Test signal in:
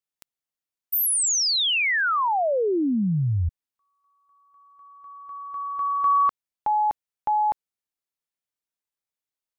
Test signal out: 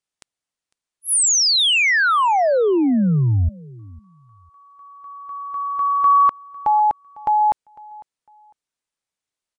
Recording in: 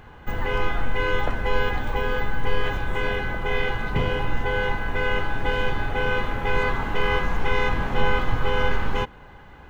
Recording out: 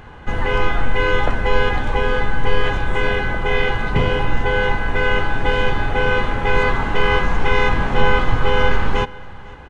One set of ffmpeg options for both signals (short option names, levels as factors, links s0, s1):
-filter_complex "[0:a]aresample=22050,aresample=44100,asplit=2[s0][s1];[s1]aecho=0:1:502|1004:0.0794|0.0183[s2];[s0][s2]amix=inputs=2:normalize=0,volume=2"